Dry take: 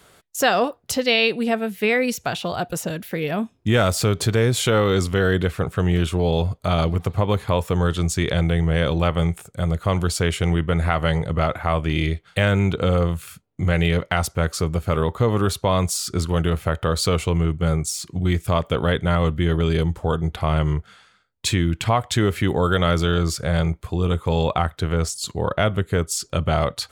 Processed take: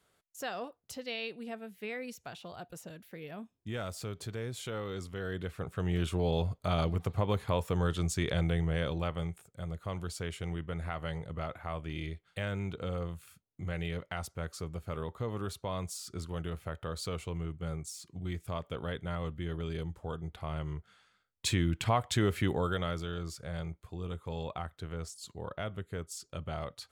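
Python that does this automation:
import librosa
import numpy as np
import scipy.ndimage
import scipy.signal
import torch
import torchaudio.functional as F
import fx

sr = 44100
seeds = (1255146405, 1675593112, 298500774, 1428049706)

y = fx.gain(x, sr, db=fx.line((5.13, -20.0), (6.11, -10.0), (8.51, -10.0), (9.44, -17.0), (20.71, -17.0), (21.47, -9.0), (22.44, -9.0), (23.05, -18.0)))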